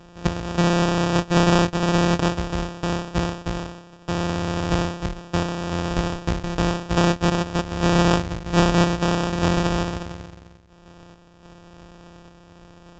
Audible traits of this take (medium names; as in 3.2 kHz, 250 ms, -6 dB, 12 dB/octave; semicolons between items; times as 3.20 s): a buzz of ramps at a fixed pitch in blocks of 256 samples; random-step tremolo; aliases and images of a low sample rate 2.1 kHz, jitter 0%; µ-law